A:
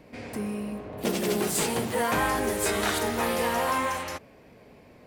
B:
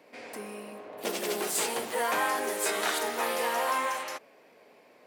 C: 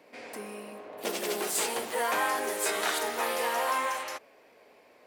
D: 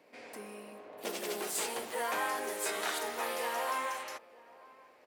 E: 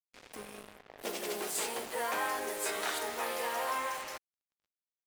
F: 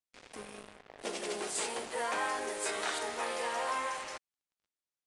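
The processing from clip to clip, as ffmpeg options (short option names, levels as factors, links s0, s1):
-af "highpass=430,volume=0.841"
-af "asubboost=boost=8.5:cutoff=53"
-filter_complex "[0:a]asplit=2[s0][s1];[s1]adelay=932.9,volume=0.0891,highshelf=f=4000:g=-21[s2];[s0][s2]amix=inputs=2:normalize=0,volume=0.531"
-af "acrusher=bits=6:mix=0:aa=0.5"
-af "aresample=22050,aresample=44100"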